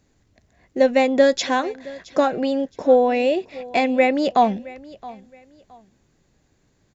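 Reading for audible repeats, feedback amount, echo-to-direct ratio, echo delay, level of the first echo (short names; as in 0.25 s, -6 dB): 2, 27%, -19.5 dB, 0.669 s, -20.0 dB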